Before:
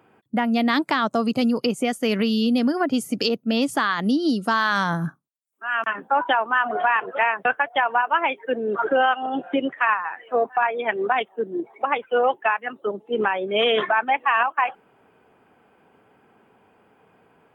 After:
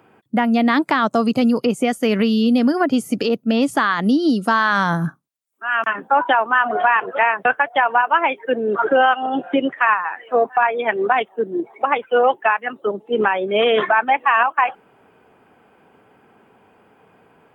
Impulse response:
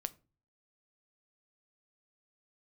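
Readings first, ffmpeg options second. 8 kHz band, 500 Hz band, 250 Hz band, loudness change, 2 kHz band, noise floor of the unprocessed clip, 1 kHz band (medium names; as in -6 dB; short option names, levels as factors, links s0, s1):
no reading, +4.5 dB, +4.5 dB, +4.0 dB, +4.0 dB, -60 dBFS, +4.5 dB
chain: -filter_complex "[0:a]acrossover=split=2600[s0][s1];[s1]acompressor=threshold=0.0178:ratio=4:attack=1:release=60[s2];[s0][s2]amix=inputs=2:normalize=0,volume=1.68"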